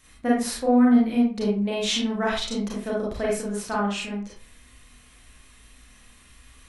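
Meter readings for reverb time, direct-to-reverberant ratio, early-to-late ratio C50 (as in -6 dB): 0.45 s, -5.0 dB, 2.0 dB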